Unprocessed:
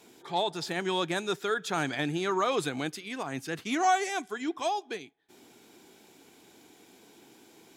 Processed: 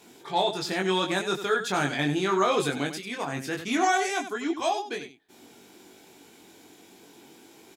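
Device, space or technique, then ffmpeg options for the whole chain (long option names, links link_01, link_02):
slapback doubling: -filter_complex "[0:a]asplit=3[link_01][link_02][link_03];[link_02]adelay=21,volume=-3dB[link_04];[link_03]adelay=96,volume=-10dB[link_05];[link_01][link_04][link_05]amix=inputs=3:normalize=0,volume=2dB"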